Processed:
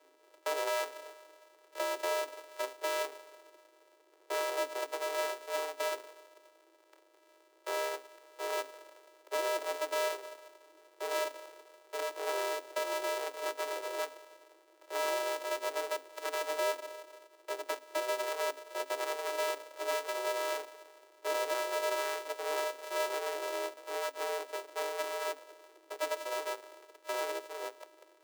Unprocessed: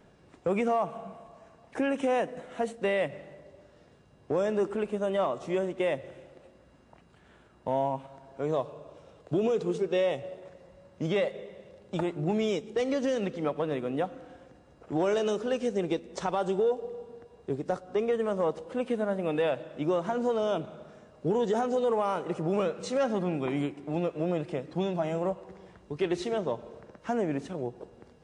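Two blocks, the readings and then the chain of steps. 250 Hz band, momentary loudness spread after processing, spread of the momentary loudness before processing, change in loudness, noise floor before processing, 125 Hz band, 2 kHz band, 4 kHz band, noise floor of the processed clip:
-21.0 dB, 15 LU, 14 LU, -5.5 dB, -59 dBFS, under -40 dB, +2.0 dB, +3.0 dB, -65 dBFS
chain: sorted samples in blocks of 128 samples; frequency shift +270 Hz; trim -6.5 dB

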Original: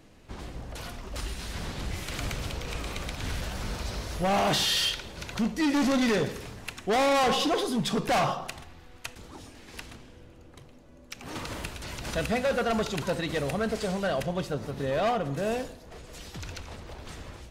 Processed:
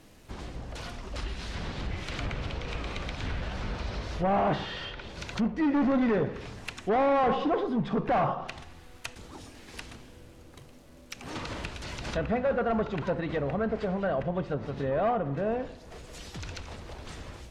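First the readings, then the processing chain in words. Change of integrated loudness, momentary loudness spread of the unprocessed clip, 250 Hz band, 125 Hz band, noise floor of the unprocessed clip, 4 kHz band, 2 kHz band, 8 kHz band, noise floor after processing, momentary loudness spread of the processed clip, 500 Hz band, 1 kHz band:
-1.5 dB, 19 LU, 0.0 dB, 0.0 dB, -51 dBFS, -10.0 dB, -4.0 dB, -11.5 dB, -51 dBFS, 18 LU, 0.0 dB, -0.5 dB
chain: bit crusher 10-bit; low-pass that closes with the level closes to 1.5 kHz, closed at -25.5 dBFS

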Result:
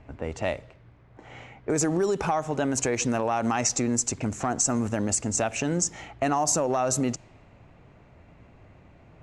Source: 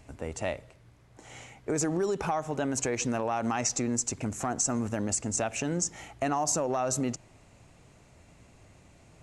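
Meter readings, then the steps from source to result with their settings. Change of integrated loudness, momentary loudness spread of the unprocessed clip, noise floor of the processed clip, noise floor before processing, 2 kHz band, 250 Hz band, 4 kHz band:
+4.0 dB, 9 LU, -54 dBFS, -58 dBFS, +4.0 dB, +4.0 dB, +4.0 dB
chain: level-controlled noise filter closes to 2.1 kHz, open at -25 dBFS; trim +4 dB

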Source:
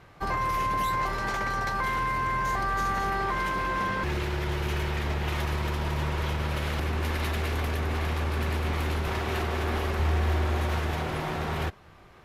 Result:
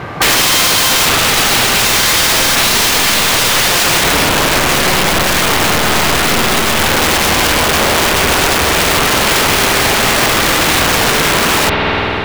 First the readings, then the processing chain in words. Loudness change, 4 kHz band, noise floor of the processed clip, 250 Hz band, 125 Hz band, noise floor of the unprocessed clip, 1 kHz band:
+19.0 dB, +28.0 dB, -14 dBFS, +16.0 dB, +7.0 dB, -52 dBFS, +14.5 dB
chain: high-pass 97 Hz 12 dB/octave; treble shelf 4.4 kHz -10.5 dB; integer overflow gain 29 dB; spring tank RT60 3.4 s, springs 49 ms, chirp 40 ms, DRR 5 dB; loudness maximiser +33 dB; trim -3.5 dB

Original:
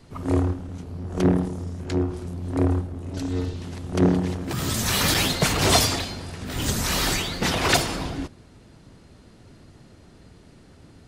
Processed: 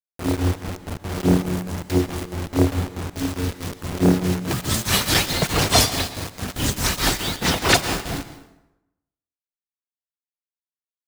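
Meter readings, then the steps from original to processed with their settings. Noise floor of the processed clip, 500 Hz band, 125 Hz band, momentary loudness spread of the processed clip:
under -85 dBFS, +1.5 dB, +1.5 dB, 13 LU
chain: tremolo triangle 4.7 Hz, depth 95%; word length cut 6-bit, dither none; plate-style reverb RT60 0.91 s, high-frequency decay 0.7×, pre-delay 105 ms, DRR 12 dB; trim +6 dB

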